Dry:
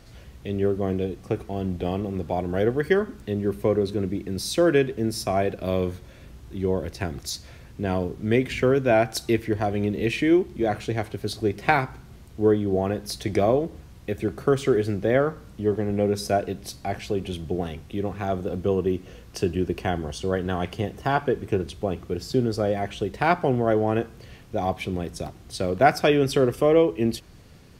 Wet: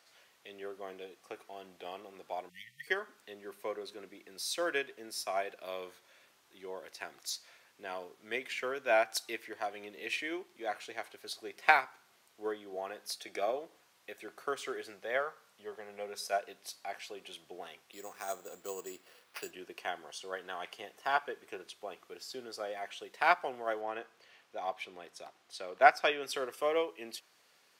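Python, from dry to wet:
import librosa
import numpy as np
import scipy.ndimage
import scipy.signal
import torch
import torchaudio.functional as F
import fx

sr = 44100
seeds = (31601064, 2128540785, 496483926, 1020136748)

y = fx.spec_erase(x, sr, start_s=2.49, length_s=0.38, low_hz=210.0, high_hz=1800.0)
y = fx.notch_comb(y, sr, f0_hz=1000.0, at=(13.15, 13.56))
y = fx.peak_eq(y, sr, hz=300.0, db=-11.5, octaves=0.31, at=(14.92, 16.46))
y = fx.sample_hold(y, sr, seeds[0], rate_hz=7400.0, jitter_pct=0, at=(17.92, 19.51))
y = fx.high_shelf(y, sr, hz=7400.0, db=-10.5, at=(23.81, 26.23))
y = scipy.signal.sosfilt(scipy.signal.butter(2, 820.0, 'highpass', fs=sr, output='sos'), y)
y = fx.upward_expand(y, sr, threshold_db=-32.0, expansion=1.5)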